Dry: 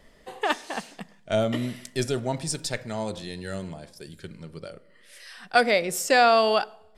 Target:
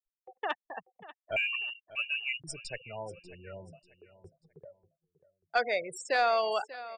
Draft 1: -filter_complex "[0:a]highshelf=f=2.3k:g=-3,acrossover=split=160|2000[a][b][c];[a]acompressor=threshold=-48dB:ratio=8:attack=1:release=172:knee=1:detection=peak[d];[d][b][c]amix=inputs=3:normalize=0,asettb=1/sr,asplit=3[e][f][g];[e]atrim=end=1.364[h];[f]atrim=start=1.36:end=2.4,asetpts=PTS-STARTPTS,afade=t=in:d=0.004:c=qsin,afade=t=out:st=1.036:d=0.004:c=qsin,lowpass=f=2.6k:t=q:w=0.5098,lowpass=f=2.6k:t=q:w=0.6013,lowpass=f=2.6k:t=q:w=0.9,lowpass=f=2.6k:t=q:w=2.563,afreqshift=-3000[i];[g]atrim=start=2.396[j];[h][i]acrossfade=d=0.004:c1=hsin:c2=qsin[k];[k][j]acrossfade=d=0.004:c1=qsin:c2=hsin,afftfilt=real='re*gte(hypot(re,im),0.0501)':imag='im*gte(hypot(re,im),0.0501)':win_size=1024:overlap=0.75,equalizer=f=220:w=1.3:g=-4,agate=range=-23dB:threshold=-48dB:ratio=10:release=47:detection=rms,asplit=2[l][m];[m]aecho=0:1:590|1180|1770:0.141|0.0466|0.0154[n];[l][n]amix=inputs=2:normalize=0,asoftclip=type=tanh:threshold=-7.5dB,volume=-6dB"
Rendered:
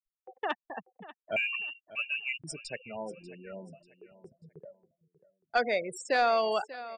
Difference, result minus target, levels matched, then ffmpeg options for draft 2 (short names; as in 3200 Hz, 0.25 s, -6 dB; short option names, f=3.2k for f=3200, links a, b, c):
compressor: peak gain reduction +9 dB; 250 Hz band +6.5 dB
-filter_complex "[0:a]highshelf=f=2.3k:g=-3,acrossover=split=160|2000[a][b][c];[a]acompressor=threshold=-37.5dB:ratio=8:attack=1:release=172:knee=1:detection=peak[d];[d][b][c]amix=inputs=3:normalize=0,asettb=1/sr,asplit=3[e][f][g];[e]atrim=end=1.364[h];[f]atrim=start=1.36:end=2.4,asetpts=PTS-STARTPTS,afade=t=in:d=0.004:c=qsin,afade=t=out:st=1.036:d=0.004:c=qsin,lowpass=f=2.6k:t=q:w=0.5098,lowpass=f=2.6k:t=q:w=0.6013,lowpass=f=2.6k:t=q:w=0.9,lowpass=f=2.6k:t=q:w=2.563,afreqshift=-3000[i];[g]atrim=start=2.396[j];[h][i]acrossfade=d=0.004:c1=hsin:c2=qsin[k];[k][j]acrossfade=d=0.004:c1=qsin:c2=hsin,afftfilt=real='re*gte(hypot(re,im),0.0501)':imag='im*gte(hypot(re,im),0.0501)':win_size=1024:overlap=0.75,equalizer=f=220:w=1.3:g=-15,agate=range=-23dB:threshold=-48dB:ratio=10:release=47:detection=rms,asplit=2[l][m];[m]aecho=0:1:590|1180|1770:0.141|0.0466|0.0154[n];[l][n]amix=inputs=2:normalize=0,asoftclip=type=tanh:threshold=-7.5dB,volume=-6dB"